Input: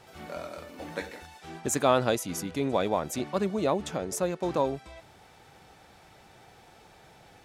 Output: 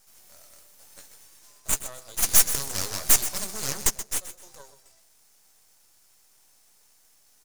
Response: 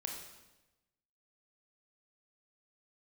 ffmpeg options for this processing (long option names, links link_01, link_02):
-filter_complex "[0:a]bass=frequency=250:gain=-6,treble=frequency=4000:gain=5,asplit=2[link_01][link_02];[link_02]adelay=14,volume=-8.5dB[link_03];[link_01][link_03]amix=inputs=2:normalize=0,asplit=3[link_04][link_05][link_06];[link_04]afade=type=out:start_time=1.24:duration=0.02[link_07];[link_05]afreqshift=240,afade=type=in:start_time=1.24:duration=0.02,afade=type=out:start_time=1.71:duration=0.02[link_08];[link_06]afade=type=in:start_time=1.71:duration=0.02[link_09];[link_07][link_08][link_09]amix=inputs=3:normalize=0,asplit=3[link_10][link_11][link_12];[link_10]afade=type=out:start_time=2.22:duration=0.02[link_13];[link_11]aeval=exprs='0.237*sin(PI/2*5.62*val(0)/0.237)':channel_layout=same,afade=type=in:start_time=2.22:duration=0.02,afade=type=out:start_time=3.89:duration=0.02[link_14];[link_12]afade=type=in:start_time=3.89:duration=0.02[link_15];[link_13][link_14][link_15]amix=inputs=3:normalize=0,equalizer=frequency=290:width=2.2:gain=-12,bandreject=frequency=7800:width=25,aecho=1:1:127|254|381:0.224|0.0627|0.0176,aexciter=amount=15.1:drive=4.5:freq=4700,aeval=exprs='max(val(0),0)':channel_layout=same,volume=-17.5dB"